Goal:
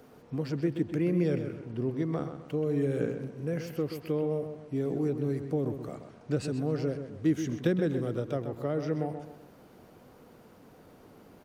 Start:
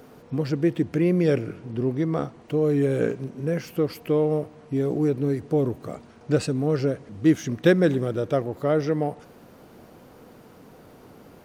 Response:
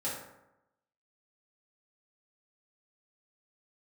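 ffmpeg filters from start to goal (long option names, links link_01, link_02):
-filter_complex "[0:a]acrossover=split=340[link_01][link_02];[link_02]acompressor=threshold=-25dB:ratio=5[link_03];[link_01][link_03]amix=inputs=2:normalize=0,asplit=2[link_04][link_05];[link_05]adelay=129,lowpass=frequency=4100:poles=1,volume=-8.5dB,asplit=2[link_06][link_07];[link_07]adelay=129,lowpass=frequency=4100:poles=1,volume=0.4,asplit=2[link_08][link_09];[link_09]adelay=129,lowpass=frequency=4100:poles=1,volume=0.4,asplit=2[link_10][link_11];[link_11]adelay=129,lowpass=frequency=4100:poles=1,volume=0.4[link_12];[link_06][link_08][link_10][link_12]amix=inputs=4:normalize=0[link_13];[link_04][link_13]amix=inputs=2:normalize=0,volume=-6.5dB"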